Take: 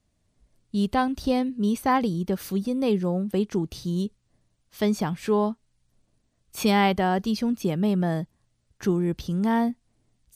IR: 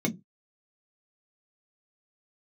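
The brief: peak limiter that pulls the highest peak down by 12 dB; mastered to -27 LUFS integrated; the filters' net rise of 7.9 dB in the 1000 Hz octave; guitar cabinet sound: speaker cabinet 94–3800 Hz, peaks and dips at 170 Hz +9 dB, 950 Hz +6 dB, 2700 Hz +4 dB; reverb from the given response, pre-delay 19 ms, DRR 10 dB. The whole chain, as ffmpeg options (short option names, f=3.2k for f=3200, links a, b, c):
-filter_complex "[0:a]equalizer=f=1k:t=o:g=6,alimiter=limit=-19dB:level=0:latency=1,asplit=2[a][b];[1:a]atrim=start_sample=2205,adelay=19[c];[b][c]afir=irnorm=-1:irlink=0,volume=-18dB[d];[a][d]amix=inputs=2:normalize=0,highpass=94,equalizer=f=170:t=q:w=4:g=9,equalizer=f=950:t=q:w=4:g=6,equalizer=f=2.7k:t=q:w=4:g=4,lowpass=f=3.8k:w=0.5412,lowpass=f=3.8k:w=1.3066,volume=-7.5dB"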